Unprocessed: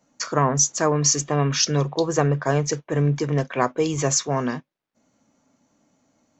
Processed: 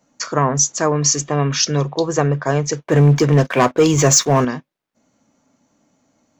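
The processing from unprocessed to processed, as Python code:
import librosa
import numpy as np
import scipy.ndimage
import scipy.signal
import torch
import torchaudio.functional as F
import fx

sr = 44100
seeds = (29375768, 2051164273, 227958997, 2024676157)

y = fx.leveller(x, sr, passes=2, at=(2.83, 4.45))
y = y * 10.0 ** (3.0 / 20.0)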